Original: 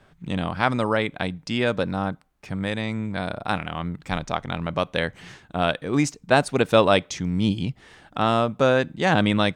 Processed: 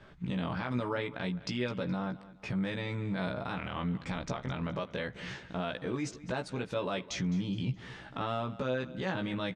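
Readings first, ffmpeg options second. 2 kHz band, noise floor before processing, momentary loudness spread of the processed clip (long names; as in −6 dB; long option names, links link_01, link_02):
−12.5 dB, −57 dBFS, 4 LU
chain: -filter_complex "[0:a]lowpass=5400,bandreject=frequency=740:width=12,acompressor=threshold=-28dB:ratio=6,alimiter=level_in=1.5dB:limit=-24dB:level=0:latency=1:release=34,volume=-1.5dB,asplit=2[link_01][link_02];[link_02]adelay=16,volume=-3.5dB[link_03];[link_01][link_03]amix=inputs=2:normalize=0,asplit=2[link_04][link_05];[link_05]aecho=0:1:210|420|630:0.133|0.0453|0.0154[link_06];[link_04][link_06]amix=inputs=2:normalize=0"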